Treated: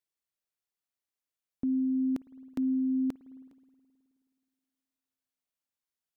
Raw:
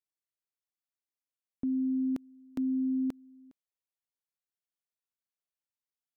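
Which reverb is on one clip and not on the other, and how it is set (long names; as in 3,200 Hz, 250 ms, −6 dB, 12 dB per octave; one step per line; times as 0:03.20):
spring reverb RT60 2.3 s, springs 53 ms, chirp 75 ms, DRR 18 dB
level +1.5 dB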